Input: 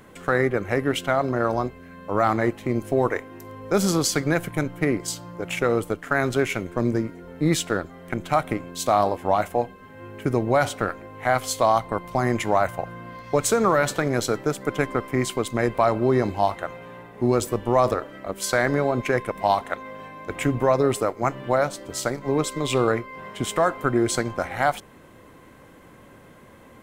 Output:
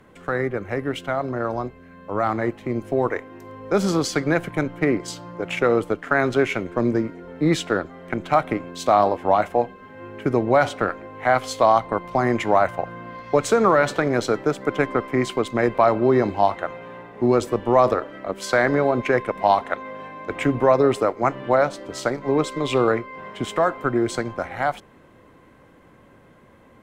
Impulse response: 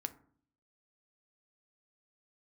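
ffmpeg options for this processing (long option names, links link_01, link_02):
-filter_complex "[0:a]aemphasis=mode=reproduction:type=cd,acrossover=split=190|6900[link_01][link_02][link_03];[link_02]dynaudnorm=framelen=340:gausssize=21:maxgain=11.5dB[link_04];[link_01][link_04][link_03]amix=inputs=3:normalize=0,volume=-3dB"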